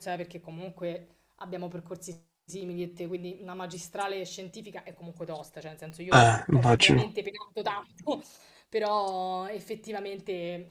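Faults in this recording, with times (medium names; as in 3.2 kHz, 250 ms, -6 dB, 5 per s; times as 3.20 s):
5.90 s: pop -30 dBFS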